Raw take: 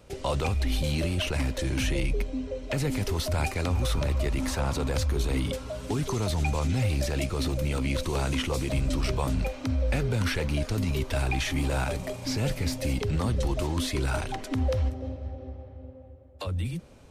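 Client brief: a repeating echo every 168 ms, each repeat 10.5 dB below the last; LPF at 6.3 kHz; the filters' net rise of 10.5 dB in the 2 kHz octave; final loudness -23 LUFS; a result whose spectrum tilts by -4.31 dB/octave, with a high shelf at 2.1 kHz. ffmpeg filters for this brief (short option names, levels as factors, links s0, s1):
-af "lowpass=6300,equalizer=f=2000:t=o:g=9,highshelf=f=2100:g=7,aecho=1:1:168|336|504:0.299|0.0896|0.0269,volume=1.33"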